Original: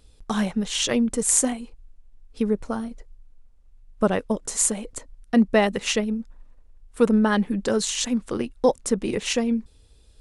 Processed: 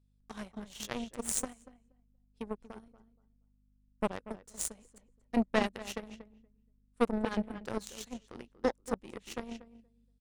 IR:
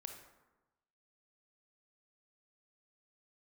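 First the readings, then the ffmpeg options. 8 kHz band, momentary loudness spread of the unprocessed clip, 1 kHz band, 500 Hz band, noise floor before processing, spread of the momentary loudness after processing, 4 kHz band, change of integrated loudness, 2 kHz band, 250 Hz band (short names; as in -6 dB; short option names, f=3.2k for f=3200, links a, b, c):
-16.0 dB, 11 LU, -10.0 dB, -13.0 dB, -54 dBFS, 17 LU, -16.5 dB, -13.5 dB, -12.0 dB, -14.5 dB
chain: -filter_complex "[0:a]aeval=exprs='val(0)+0.0112*(sin(2*PI*50*n/s)+sin(2*PI*2*50*n/s)/2+sin(2*PI*3*50*n/s)/3+sin(2*PI*4*50*n/s)/4+sin(2*PI*5*50*n/s)/5)':c=same,asplit=2[a][b];[b]adelay=236,lowpass=f=2.2k:p=1,volume=-7dB,asplit=2[c][d];[d]adelay=236,lowpass=f=2.2k:p=1,volume=0.24,asplit=2[e][f];[f]adelay=236,lowpass=f=2.2k:p=1,volume=0.24[g];[a][c][e][g]amix=inputs=4:normalize=0,aeval=exprs='0.75*(cos(1*acos(clip(val(0)/0.75,-1,1)))-cos(1*PI/2))+0.0335*(cos(3*acos(clip(val(0)/0.75,-1,1)))-cos(3*PI/2))+0.0944*(cos(4*acos(clip(val(0)/0.75,-1,1)))-cos(4*PI/2))+0.0422*(cos(6*acos(clip(val(0)/0.75,-1,1)))-cos(6*PI/2))+0.0841*(cos(7*acos(clip(val(0)/0.75,-1,1)))-cos(7*PI/2))':c=same,volume=-8.5dB"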